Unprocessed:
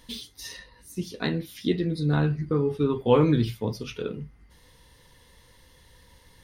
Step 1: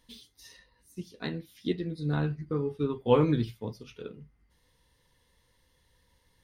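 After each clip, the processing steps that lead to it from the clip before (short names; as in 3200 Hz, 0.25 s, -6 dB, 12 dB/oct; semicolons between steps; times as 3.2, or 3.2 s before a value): upward expander 1.5:1, over -36 dBFS; gain -2 dB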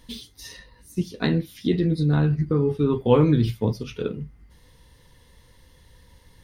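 low shelf 310 Hz +6 dB; in parallel at 0 dB: negative-ratio compressor -31 dBFS, ratio -1; on the sum: gain +2 dB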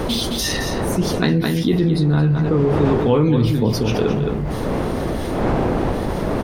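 wind noise 490 Hz -34 dBFS; echo 0.216 s -10 dB; fast leveller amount 70%; gain -1 dB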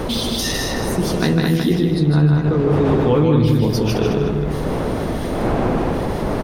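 feedback echo 0.155 s, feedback 26%, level -4 dB; gain -1 dB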